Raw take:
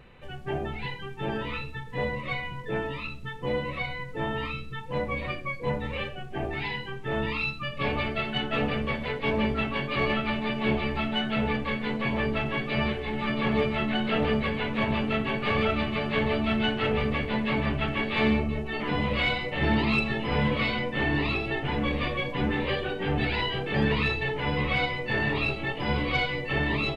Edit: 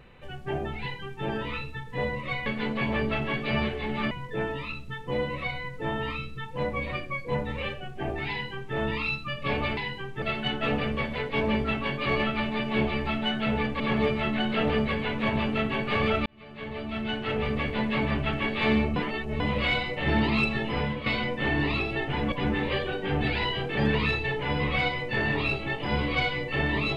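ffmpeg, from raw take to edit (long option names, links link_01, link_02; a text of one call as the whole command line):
ffmpeg -i in.wav -filter_complex "[0:a]asplit=11[link_01][link_02][link_03][link_04][link_05][link_06][link_07][link_08][link_09][link_10][link_11];[link_01]atrim=end=2.462[link_12];[link_02]atrim=start=11.698:end=13.352[link_13];[link_03]atrim=start=2.458:end=8.122[link_14];[link_04]atrim=start=6.648:end=7.102[link_15];[link_05]atrim=start=8.118:end=11.702[link_16];[link_06]atrim=start=13.348:end=15.81,asetpts=PTS-STARTPTS,afade=type=out:start_time=2.458:duration=0.004:curve=hsin[link_17];[link_07]atrim=start=15.81:end=18.512,asetpts=PTS-STARTPTS,afade=type=in:duration=1.48[link_18];[link_08]atrim=start=18.508:end=18.952,asetpts=PTS-STARTPTS,areverse[link_19];[link_09]atrim=start=18.948:end=20.61,asetpts=PTS-STARTPTS,afade=type=out:start_time=1.342:duration=0.32:curve=qua:silence=0.375837[link_20];[link_10]atrim=start=20.61:end=21.872,asetpts=PTS-STARTPTS,afade=type=in:duration=0.004:curve=hsin:silence=0.375837[link_21];[link_11]atrim=start=22.288[link_22];[link_12][link_13]acrossfade=duration=0.004:curve1=hsin:curve2=hsin[link_23];[link_23][link_14]acrossfade=duration=0.004:curve1=hsin:curve2=hsin[link_24];[link_24][link_15]acrossfade=duration=0.004:curve1=hsin:curve2=hsin[link_25];[link_25][link_16]acrossfade=duration=0.004:curve1=hsin:curve2=hsin[link_26];[link_17][link_18]concat=n=2:v=0:a=1[link_27];[link_26][link_27]acrossfade=duration=0.004:curve1=hsin:curve2=hsin[link_28];[link_28][link_19]acrossfade=duration=0.004:curve1=hsin:curve2=hsin[link_29];[link_20][link_21]concat=n=2:v=0:a=1[link_30];[link_29][link_30]acrossfade=duration=0.004:curve1=hsin:curve2=hsin[link_31];[link_31][link_22]acrossfade=duration=0.004:curve1=hsin:curve2=hsin" out.wav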